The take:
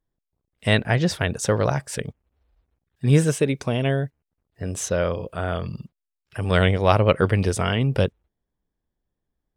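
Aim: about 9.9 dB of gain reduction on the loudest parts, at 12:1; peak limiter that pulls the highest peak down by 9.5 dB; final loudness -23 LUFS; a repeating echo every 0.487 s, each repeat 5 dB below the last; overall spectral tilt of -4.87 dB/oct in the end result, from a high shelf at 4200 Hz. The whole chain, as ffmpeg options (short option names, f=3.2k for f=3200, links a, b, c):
-af "highshelf=f=4.2k:g=4.5,acompressor=threshold=-22dB:ratio=12,alimiter=limit=-20.5dB:level=0:latency=1,aecho=1:1:487|974|1461|1948|2435|2922|3409:0.562|0.315|0.176|0.0988|0.0553|0.031|0.0173,volume=8dB"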